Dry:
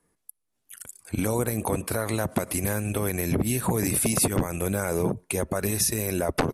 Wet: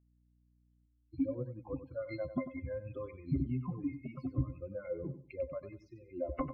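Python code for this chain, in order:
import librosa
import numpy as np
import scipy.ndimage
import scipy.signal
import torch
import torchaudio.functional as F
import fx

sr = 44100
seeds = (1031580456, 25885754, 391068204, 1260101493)

p1 = fx.bin_expand(x, sr, power=3.0)
p2 = fx.rider(p1, sr, range_db=10, speed_s=0.5)
p3 = p1 + (p2 * librosa.db_to_amplitude(1.0))
p4 = fx.spec_topn(p3, sr, count=64)
p5 = scipy.signal.sosfilt(scipy.signal.butter(4, 3700.0, 'lowpass', fs=sr, output='sos'), p4)
p6 = fx.octave_resonator(p5, sr, note='C', decay_s=0.11)
p7 = p6 + fx.echo_feedback(p6, sr, ms=95, feedback_pct=23, wet_db=-12.0, dry=0)
p8 = fx.add_hum(p7, sr, base_hz=60, snr_db=31)
p9 = fx.env_phaser(p8, sr, low_hz=170.0, high_hz=1300.0, full_db=-28.5, at=(0.85, 1.27), fade=0.02)
y = p9 * librosa.db_to_amplitude(-1.5)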